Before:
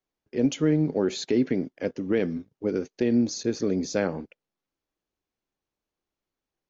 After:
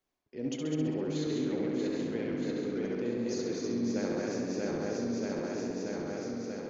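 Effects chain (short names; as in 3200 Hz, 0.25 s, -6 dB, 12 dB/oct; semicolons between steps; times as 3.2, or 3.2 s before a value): regenerating reverse delay 0.317 s, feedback 72%, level -2 dB; reverse; compressor 5:1, threshold -37 dBFS, peak gain reduction 18.5 dB; reverse; tape echo 67 ms, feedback 89%, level -3 dB, low-pass 6000 Hz; gain +2.5 dB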